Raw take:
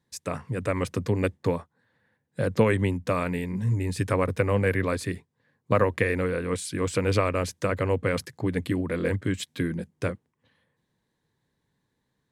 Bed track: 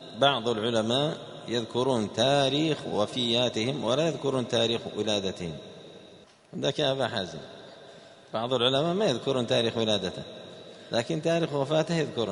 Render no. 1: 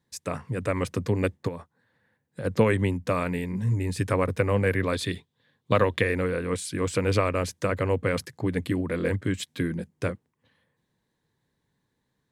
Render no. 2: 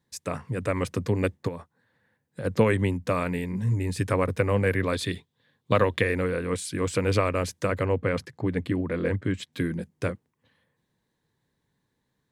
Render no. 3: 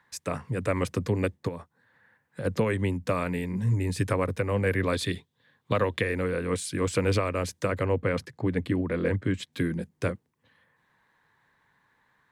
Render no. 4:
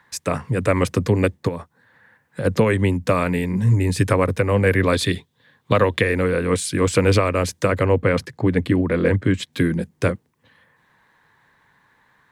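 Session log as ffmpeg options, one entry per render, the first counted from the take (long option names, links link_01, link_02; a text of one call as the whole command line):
ffmpeg -i in.wav -filter_complex "[0:a]asplit=3[link_01][link_02][link_03];[link_01]afade=type=out:start_time=1.47:duration=0.02[link_04];[link_02]acompressor=threshold=-31dB:ratio=5:attack=3.2:release=140:knee=1:detection=peak,afade=type=in:start_time=1.47:duration=0.02,afade=type=out:start_time=2.44:duration=0.02[link_05];[link_03]afade=type=in:start_time=2.44:duration=0.02[link_06];[link_04][link_05][link_06]amix=inputs=3:normalize=0,asettb=1/sr,asplit=3[link_07][link_08][link_09];[link_07]atrim=end=4.934[link_10];[link_08]atrim=start=4.93:end=6.01,asetpts=PTS-STARTPTS,afade=type=in:duration=0.004:curve=qsin,afade=type=out:start_time=1.076:duration=0.004:curve=qsin,equalizer=frequency=3500:width_type=o:width=0.52:gain=14.5[link_11];[link_09]atrim=start=6.006[link_12];[link_10][link_11]acrossfade=duration=0.004:curve1=hsin:curve2=qsin[link_13];[link_13][link_12]acrossfade=duration=0.004:curve1=qsin:curve2=hsin" out.wav
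ffmpeg -i in.wav -filter_complex "[0:a]asettb=1/sr,asplit=3[link_01][link_02][link_03];[link_01]atrim=end=7.854[link_04];[link_02]atrim=start=7.85:end=9.53,asetpts=PTS-STARTPTS,afade=type=in:duration=0.004:curve=qsin,afade=type=out:start_time=1.676:duration=0.004:curve=qsin,aemphasis=mode=reproduction:type=50kf[link_05];[link_03]atrim=start=9.526[link_06];[link_04][link_05]acrossfade=duration=0.004:curve1=hsin:curve2=qsin[link_07];[link_07][link_06]acrossfade=duration=0.004:curve1=qsin:curve2=hsin" out.wav
ffmpeg -i in.wav -filter_complex "[0:a]acrossover=split=320|950|2000[link_01][link_02][link_03][link_04];[link_03]acompressor=mode=upward:threshold=-51dB:ratio=2.5[link_05];[link_01][link_02][link_05][link_04]amix=inputs=4:normalize=0,alimiter=limit=-13.5dB:level=0:latency=1:release=480" out.wav
ffmpeg -i in.wav -af "volume=8.5dB" out.wav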